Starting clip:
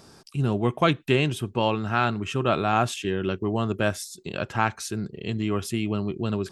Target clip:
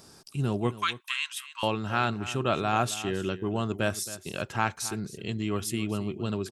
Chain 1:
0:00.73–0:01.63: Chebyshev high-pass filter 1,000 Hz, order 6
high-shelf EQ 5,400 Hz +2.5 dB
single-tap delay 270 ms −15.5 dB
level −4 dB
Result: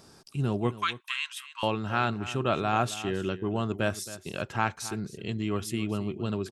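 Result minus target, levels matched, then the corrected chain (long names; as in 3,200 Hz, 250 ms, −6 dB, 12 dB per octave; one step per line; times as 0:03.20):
8,000 Hz band −4.0 dB
0:00.73–0:01.63: Chebyshev high-pass filter 1,000 Hz, order 6
high-shelf EQ 5,400 Hz +9 dB
single-tap delay 270 ms −15.5 dB
level −4 dB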